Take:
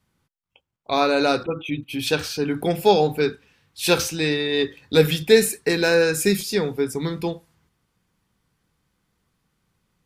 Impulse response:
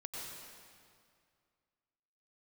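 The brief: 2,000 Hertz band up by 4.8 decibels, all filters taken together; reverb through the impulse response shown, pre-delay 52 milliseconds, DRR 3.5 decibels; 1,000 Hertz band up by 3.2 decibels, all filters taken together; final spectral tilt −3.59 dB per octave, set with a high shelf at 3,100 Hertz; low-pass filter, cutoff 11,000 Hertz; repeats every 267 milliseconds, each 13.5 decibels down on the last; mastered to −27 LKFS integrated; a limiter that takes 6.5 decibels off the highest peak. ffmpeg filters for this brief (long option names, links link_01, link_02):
-filter_complex "[0:a]lowpass=11000,equalizer=frequency=1000:width_type=o:gain=3.5,equalizer=frequency=2000:width_type=o:gain=7.5,highshelf=frequency=3100:gain=-6.5,alimiter=limit=-8.5dB:level=0:latency=1,aecho=1:1:267|534:0.211|0.0444,asplit=2[link_01][link_02];[1:a]atrim=start_sample=2205,adelay=52[link_03];[link_02][link_03]afir=irnorm=-1:irlink=0,volume=-2.5dB[link_04];[link_01][link_04]amix=inputs=2:normalize=0,volume=-7dB"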